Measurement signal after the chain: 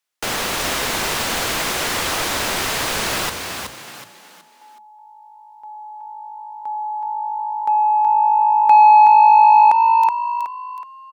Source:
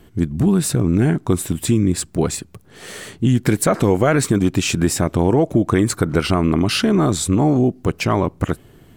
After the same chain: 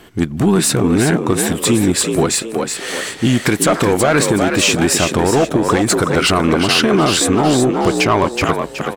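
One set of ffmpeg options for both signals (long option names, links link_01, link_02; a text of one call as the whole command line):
ffmpeg -i in.wav -filter_complex "[0:a]asplit=2[link_01][link_02];[link_02]highpass=frequency=720:poles=1,volume=16dB,asoftclip=type=tanh:threshold=-2dB[link_03];[link_01][link_03]amix=inputs=2:normalize=0,lowpass=frequency=6400:poles=1,volume=-6dB,asplit=2[link_04][link_05];[link_05]asplit=4[link_06][link_07][link_08][link_09];[link_06]adelay=372,afreqshift=53,volume=-6dB[link_10];[link_07]adelay=744,afreqshift=106,volume=-14.6dB[link_11];[link_08]adelay=1116,afreqshift=159,volume=-23.3dB[link_12];[link_09]adelay=1488,afreqshift=212,volume=-31.9dB[link_13];[link_10][link_11][link_12][link_13]amix=inputs=4:normalize=0[link_14];[link_04][link_14]amix=inputs=2:normalize=0,alimiter=limit=-6dB:level=0:latency=1:release=94,volume=1.5dB" out.wav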